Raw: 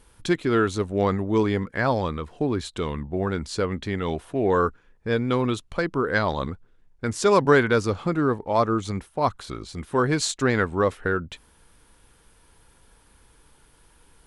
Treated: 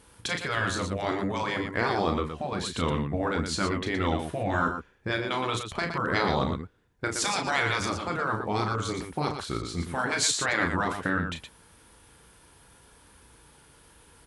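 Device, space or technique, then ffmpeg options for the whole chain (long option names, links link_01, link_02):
slapback doubling: -filter_complex "[0:a]afftfilt=real='re*lt(hypot(re,im),0.282)':imag='im*lt(hypot(re,im),0.282)':win_size=1024:overlap=0.75,asplit=3[link_01][link_02][link_03];[link_02]adelay=35,volume=-6.5dB[link_04];[link_03]adelay=118,volume=-7dB[link_05];[link_01][link_04][link_05]amix=inputs=3:normalize=0,highpass=60,volume=1.5dB"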